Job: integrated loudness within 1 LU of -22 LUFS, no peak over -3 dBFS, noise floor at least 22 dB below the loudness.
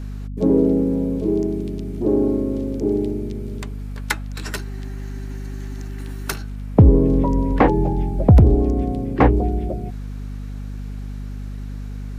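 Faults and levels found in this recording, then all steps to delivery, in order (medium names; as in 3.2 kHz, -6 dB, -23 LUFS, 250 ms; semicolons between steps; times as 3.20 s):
hum 50 Hz; highest harmonic 250 Hz; hum level -27 dBFS; loudness -19.5 LUFS; peak level -1.5 dBFS; loudness target -22.0 LUFS
-> de-hum 50 Hz, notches 5; trim -2.5 dB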